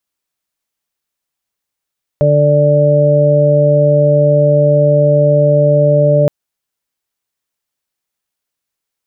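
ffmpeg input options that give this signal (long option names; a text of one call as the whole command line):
ffmpeg -f lavfi -i "aevalsrc='0.282*sin(2*PI*147*t)+0.0708*sin(2*PI*294*t)+0.126*sin(2*PI*441*t)+0.355*sin(2*PI*588*t)':duration=4.07:sample_rate=44100" out.wav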